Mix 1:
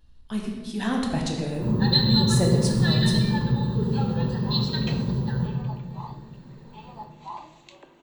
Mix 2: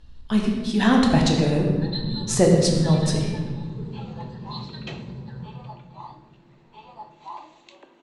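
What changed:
speech +8.5 dB; first sound -11.0 dB; master: add LPF 7100 Hz 12 dB/oct

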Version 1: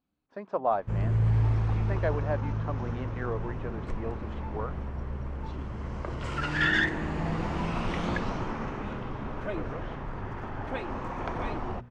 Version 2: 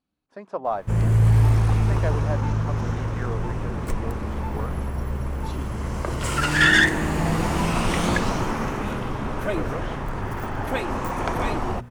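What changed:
background +7.5 dB; master: remove air absorption 150 m

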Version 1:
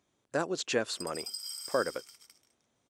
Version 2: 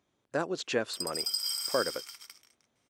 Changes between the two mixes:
background +11.0 dB; master: add bell 8200 Hz -6 dB 1.1 oct

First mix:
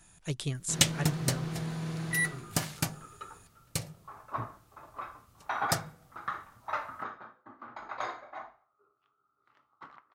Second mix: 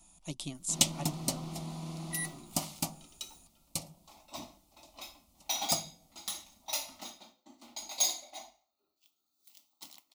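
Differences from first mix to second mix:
second sound: remove synth low-pass 1200 Hz, resonance Q 6; master: add fixed phaser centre 440 Hz, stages 6

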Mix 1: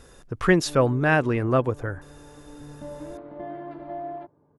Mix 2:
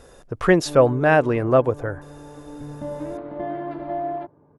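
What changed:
speech: add bell 610 Hz +7.5 dB 1.2 oct; background +7.0 dB

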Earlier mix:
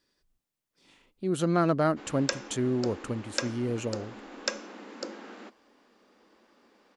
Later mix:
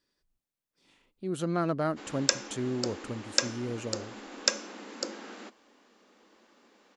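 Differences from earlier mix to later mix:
speech -4.5 dB; background: remove LPF 2700 Hz 6 dB/oct

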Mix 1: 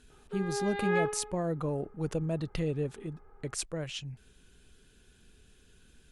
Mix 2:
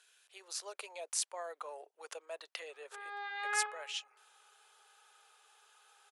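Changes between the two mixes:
background: entry +2.60 s; master: add Bessel high-pass 970 Hz, order 8

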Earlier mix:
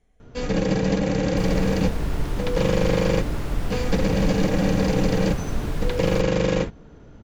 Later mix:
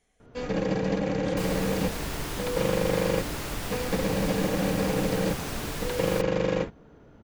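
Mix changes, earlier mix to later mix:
first sound: add LPF 1000 Hz 6 dB/oct; master: add tilt +2.5 dB/oct

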